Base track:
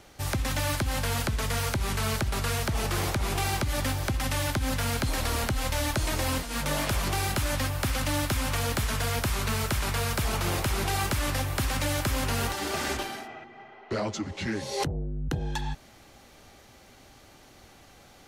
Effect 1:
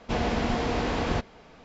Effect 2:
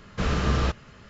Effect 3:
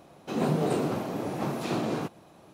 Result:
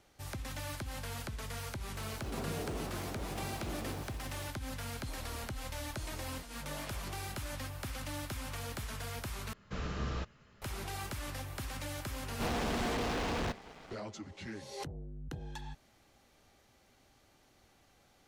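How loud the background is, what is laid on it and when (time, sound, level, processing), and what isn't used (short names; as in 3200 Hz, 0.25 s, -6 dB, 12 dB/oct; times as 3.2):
base track -13 dB
1.96 add 3 -16 dB + zero-crossing step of -30.5 dBFS
9.53 replace with 2 -13.5 dB
12.31 add 1 -17 dB + sample leveller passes 5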